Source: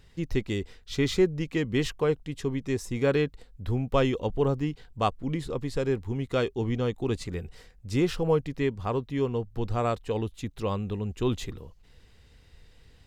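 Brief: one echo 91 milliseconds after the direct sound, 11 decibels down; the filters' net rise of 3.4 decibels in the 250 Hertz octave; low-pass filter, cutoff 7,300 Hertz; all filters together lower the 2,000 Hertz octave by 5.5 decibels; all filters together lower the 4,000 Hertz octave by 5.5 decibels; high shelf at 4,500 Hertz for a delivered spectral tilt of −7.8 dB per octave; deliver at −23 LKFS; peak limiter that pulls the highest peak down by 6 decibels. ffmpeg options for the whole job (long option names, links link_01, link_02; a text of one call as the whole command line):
ffmpeg -i in.wav -af "lowpass=7300,equalizer=frequency=250:width_type=o:gain=4.5,equalizer=frequency=2000:width_type=o:gain=-6,equalizer=frequency=4000:width_type=o:gain=-8.5,highshelf=frequency=4500:gain=7.5,alimiter=limit=-16dB:level=0:latency=1,aecho=1:1:91:0.282,volume=5.5dB" out.wav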